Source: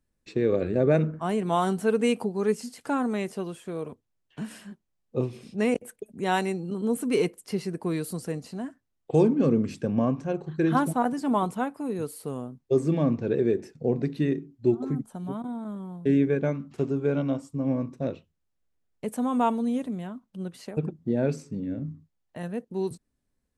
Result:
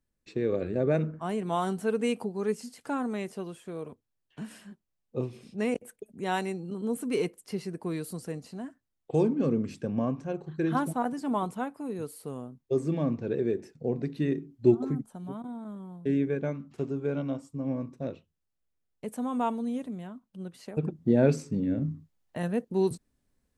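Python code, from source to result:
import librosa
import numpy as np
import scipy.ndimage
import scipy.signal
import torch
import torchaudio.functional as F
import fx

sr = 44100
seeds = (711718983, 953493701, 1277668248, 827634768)

y = fx.gain(x, sr, db=fx.line((14.1, -4.5), (14.71, 2.0), (15.12, -5.0), (20.59, -5.0), (21.08, 3.5)))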